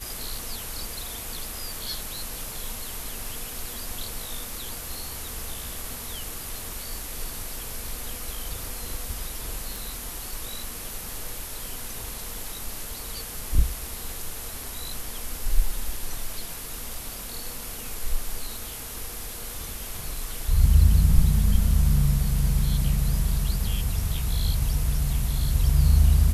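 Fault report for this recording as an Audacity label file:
9.760000	9.760000	click

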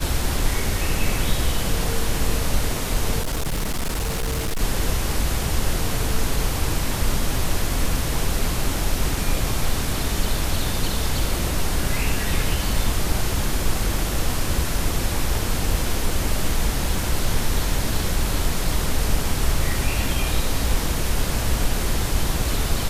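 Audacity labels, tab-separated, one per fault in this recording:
3.210000	4.620000	clipping −20 dBFS

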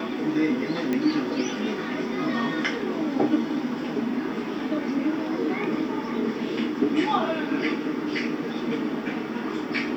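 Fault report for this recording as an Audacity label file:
0.930000	0.930000	click −14 dBFS

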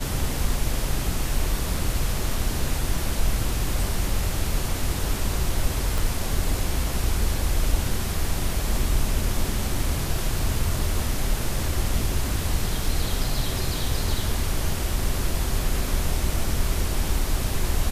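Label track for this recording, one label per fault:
5.980000	5.980000	click

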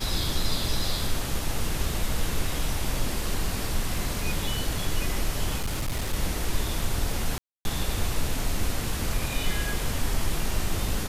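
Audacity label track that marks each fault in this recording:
5.570000	6.140000	clipping −24 dBFS
7.380000	7.650000	drop-out 271 ms

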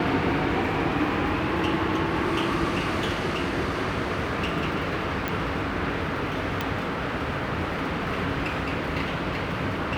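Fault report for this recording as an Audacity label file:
5.280000	5.280000	click −13 dBFS
6.610000	6.610000	click

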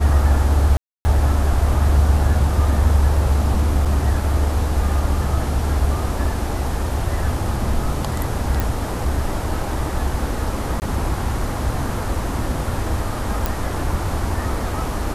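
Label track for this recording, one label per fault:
0.770000	1.050000	drop-out 280 ms
3.850000	3.860000	drop-out 5.8 ms
8.600000	8.600000	click
10.800000	10.820000	drop-out 19 ms
13.460000	13.460000	click

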